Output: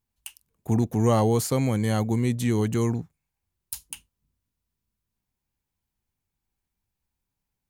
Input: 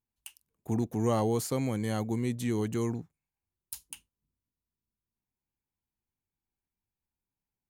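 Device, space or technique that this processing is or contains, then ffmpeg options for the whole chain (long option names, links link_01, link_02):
low shelf boost with a cut just above: -af "lowshelf=frequency=110:gain=5,equalizer=frequency=320:width_type=o:width=0.77:gain=-2.5,volume=6.5dB"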